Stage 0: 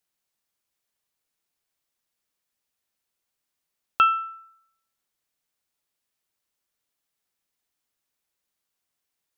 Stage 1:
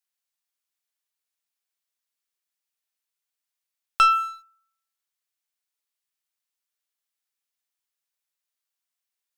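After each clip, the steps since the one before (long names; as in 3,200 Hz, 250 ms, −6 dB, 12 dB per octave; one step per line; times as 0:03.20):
high-pass filter 1,300 Hz 6 dB per octave
leveller curve on the samples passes 2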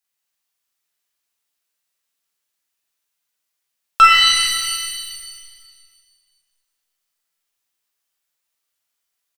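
double-tracking delay 44 ms −5 dB
reverb with rising layers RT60 1.7 s, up +7 semitones, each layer −2 dB, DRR −0.5 dB
level +4 dB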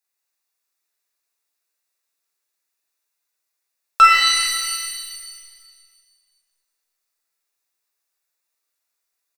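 low shelf with overshoot 260 Hz −6.5 dB, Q 1.5
notch filter 3,100 Hz, Q 5.2
level −1 dB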